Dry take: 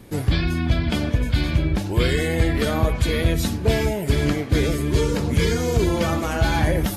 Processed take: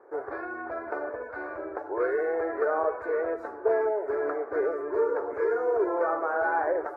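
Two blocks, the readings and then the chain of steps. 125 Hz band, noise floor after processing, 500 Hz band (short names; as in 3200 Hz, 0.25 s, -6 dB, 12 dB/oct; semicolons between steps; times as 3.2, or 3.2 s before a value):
under -40 dB, -41 dBFS, -1.0 dB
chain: elliptic band-pass 400–1500 Hz, stop band 40 dB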